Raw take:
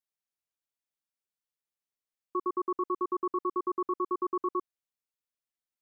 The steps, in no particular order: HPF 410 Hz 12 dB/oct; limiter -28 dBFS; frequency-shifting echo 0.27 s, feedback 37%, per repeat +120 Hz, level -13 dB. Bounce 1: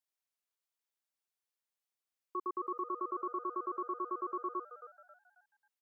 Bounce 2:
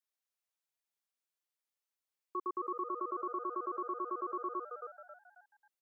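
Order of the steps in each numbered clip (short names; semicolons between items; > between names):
limiter > HPF > frequency-shifting echo; frequency-shifting echo > limiter > HPF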